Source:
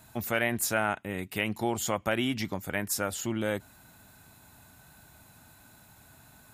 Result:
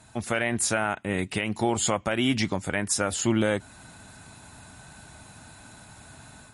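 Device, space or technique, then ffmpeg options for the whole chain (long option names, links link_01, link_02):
low-bitrate web radio: -af "dynaudnorm=framelen=230:gausssize=3:maxgain=6.5dB,alimiter=limit=-15dB:level=0:latency=1:release=265,volume=2.5dB" -ar 32000 -c:a libmp3lame -b:a 48k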